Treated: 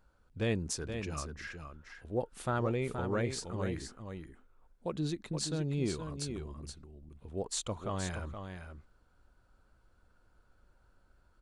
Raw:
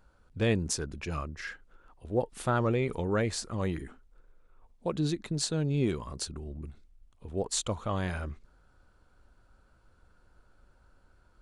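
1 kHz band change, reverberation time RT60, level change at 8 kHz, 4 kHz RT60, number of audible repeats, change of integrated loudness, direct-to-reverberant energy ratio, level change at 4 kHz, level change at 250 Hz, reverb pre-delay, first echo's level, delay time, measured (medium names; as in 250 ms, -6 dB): -4.5 dB, no reverb, -4.5 dB, no reverb, 1, -4.5 dB, no reverb, -4.5 dB, -4.5 dB, no reverb, -7.5 dB, 473 ms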